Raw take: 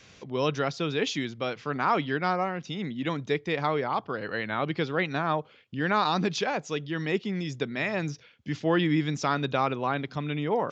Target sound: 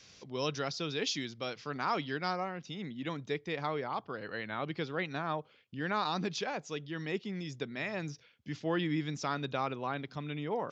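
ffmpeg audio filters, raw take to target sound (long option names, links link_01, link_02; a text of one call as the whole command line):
ffmpeg -i in.wav -af "asetnsamples=nb_out_samples=441:pad=0,asendcmd='2.4 equalizer g 3',equalizer=frequency=5100:width=1.4:gain=11,volume=-8dB" out.wav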